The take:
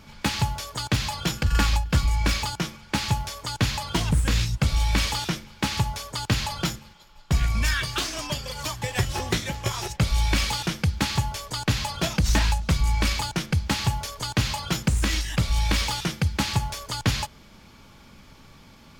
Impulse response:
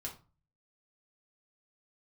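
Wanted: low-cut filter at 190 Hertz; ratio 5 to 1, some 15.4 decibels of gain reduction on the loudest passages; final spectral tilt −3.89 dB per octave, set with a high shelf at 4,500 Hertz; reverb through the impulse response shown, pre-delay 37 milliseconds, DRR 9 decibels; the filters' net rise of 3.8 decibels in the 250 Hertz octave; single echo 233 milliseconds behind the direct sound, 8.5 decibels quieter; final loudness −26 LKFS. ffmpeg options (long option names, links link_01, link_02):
-filter_complex "[0:a]highpass=190,equalizer=frequency=250:width_type=o:gain=8.5,highshelf=frequency=4500:gain=-5.5,acompressor=threshold=-36dB:ratio=5,aecho=1:1:233:0.376,asplit=2[link_01][link_02];[1:a]atrim=start_sample=2205,adelay=37[link_03];[link_02][link_03]afir=irnorm=-1:irlink=0,volume=-7.5dB[link_04];[link_01][link_04]amix=inputs=2:normalize=0,volume=12.5dB"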